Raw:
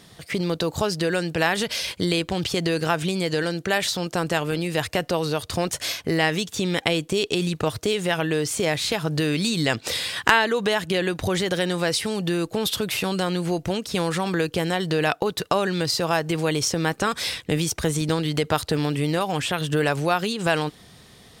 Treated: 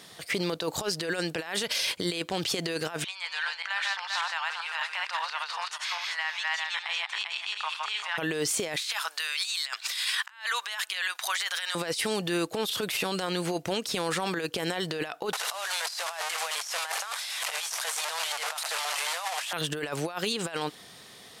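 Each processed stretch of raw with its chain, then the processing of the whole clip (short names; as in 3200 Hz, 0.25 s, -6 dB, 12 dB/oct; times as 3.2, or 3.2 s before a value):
3.04–8.18 regenerating reverse delay 0.196 s, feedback 44%, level -1 dB + elliptic high-pass 920 Hz, stop band 80 dB + tape spacing loss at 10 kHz 21 dB
8.76–11.75 HPF 1000 Hz 24 dB/oct + negative-ratio compressor -31 dBFS, ratio -0.5
15.33–19.53 delta modulation 64 kbps, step -21 dBFS + steep high-pass 640 Hz + fast leveller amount 50%
whole clip: HPF 510 Hz 6 dB/oct; negative-ratio compressor -28 dBFS, ratio -0.5; limiter -18.5 dBFS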